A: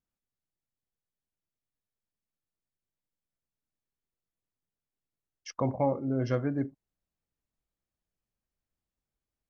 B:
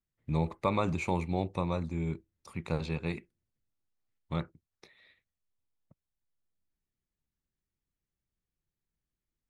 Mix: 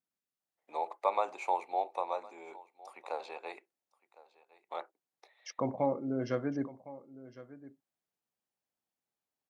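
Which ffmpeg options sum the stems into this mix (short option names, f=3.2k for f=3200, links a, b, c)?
-filter_complex "[0:a]volume=-2.5dB,asplit=2[a][b];[b]volume=-17dB[c];[1:a]highpass=f=430:w=0.5412,highpass=f=430:w=1.3066,equalizer=f=770:w=1.7:g=14.5,adelay=400,volume=-7dB,asplit=2[d][e];[e]volume=-21dB[f];[c][f]amix=inputs=2:normalize=0,aecho=0:1:1059:1[g];[a][d][g]amix=inputs=3:normalize=0,highpass=190"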